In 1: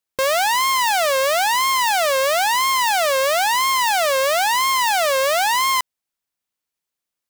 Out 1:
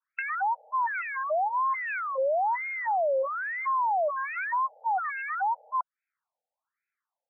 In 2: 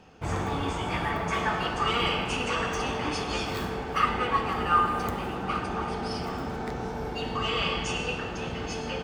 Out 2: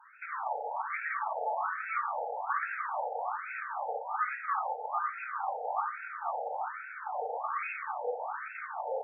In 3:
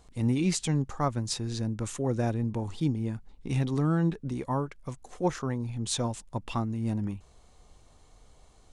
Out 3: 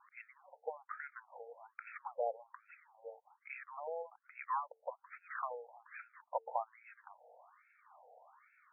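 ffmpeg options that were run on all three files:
-af "lowshelf=f=160:g=9,bandreject=f=50:t=h:w=6,bandreject=f=100:t=h:w=6,bandreject=f=150:t=h:w=6,bandreject=f=200:t=h:w=6,bandreject=f=250:t=h:w=6,bandreject=f=300:t=h:w=6,bandreject=f=350:t=h:w=6,bandreject=f=400:t=h:w=6,bandreject=f=450:t=h:w=6,acompressor=threshold=0.0316:ratio=6,adynamicequalizer=threshold=0.00355:dfrequency=3000:dqfactor=1.7:tfrequency=3000:tqfactor=1.7:attack=5:release=100:ratio=0.375:range=3:mode=cutabove:tftype=bell,afftfilt=real='re*between(b*sr/1024,610*pow(1900/610,0.5+0.5*sin(2*PI*1.2*pts/sr))/1.41,610*pow(1900/610,0.5+0.5*sin(2*PI*1.2*pts/sr))*1.41)':imag='im*between(b*sr/1024,610*pow(1900/610,0.5+0.5*sin(2*PI*1.2*pts/sr))/1.41,610*pow(1900/610,0.5+0.5*sin(2*PI*1.2*pts/sr))*1.41)':win_size=1024:overlap=0.75,volume=2.37"

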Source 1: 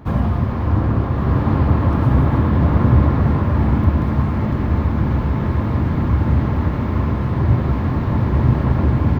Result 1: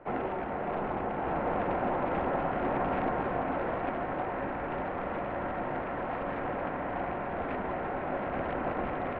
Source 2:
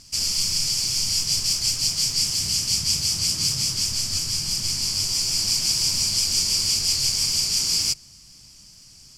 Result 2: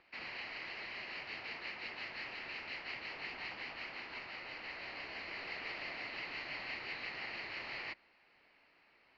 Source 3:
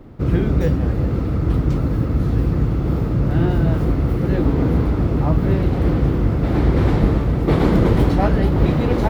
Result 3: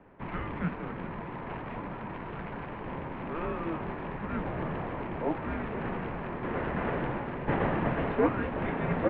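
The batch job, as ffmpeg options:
-af "acrusher=bits=6:mode=log:mix=0:aa=0.000001,highpass=f=540:t=q:w=0.5412,highpass=f=540:t=q:w=1.307,lowpass=f=2800:t=q:w=0.5176,lowpass=f=2800:t=q:w=0.7071,lowpass=f=2800:t=q:w=1.932,afreqshift=-320,volume=0.794"

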